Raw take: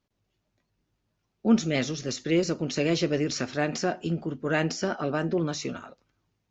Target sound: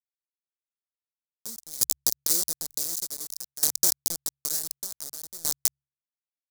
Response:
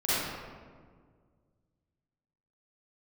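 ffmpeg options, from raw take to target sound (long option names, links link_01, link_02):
-filter_complex "[0:a]highpass=frequency=44:poles=1,asplit=2[link_01][link_02];[link_02]aecho=0:1:94|188|282:0.112|0.0359|0.0115[link_03];[link_01][link_03]amix=inputs=2:normalize=0,acrusher=bits=3:mix=0:aa=0.000001,bandreject=frequency=69.33:width_type=h:width=4,bandreject=frequency=138.66:width_type=h:width=4,anlmdn=6.31,acompressor=threshold=-26dB:ratio=12,aexciter=amount=14.8:drive=8.7:freq=4400,aeval=exprs='val(0)*pow(10,-20*if(lt(mod(0.55*n/s,1),2*abs(0.55)/1000),1-mod(0.55*n/s,1)/(2*abs(0.55)/1000),(mod(0.55*n/s,1)-2*abs(0.55)/1000)/(1-2*abs(0.55)/1000))/20)':channel_layout=same,volume=-5.5dB"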